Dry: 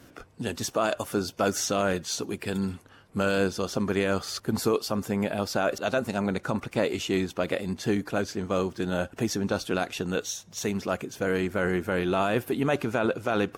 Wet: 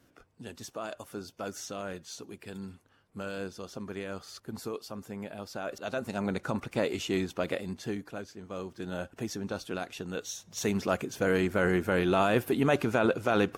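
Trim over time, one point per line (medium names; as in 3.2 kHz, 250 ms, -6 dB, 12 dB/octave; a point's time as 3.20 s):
5.50 s -12.5 dB
6.30 s -3.5 dB
7.49 s -3.5 dB
8.36 s -14.5 dB
8.91 s -8 dB
10.13 s -8 dB
10.71 s 0 dB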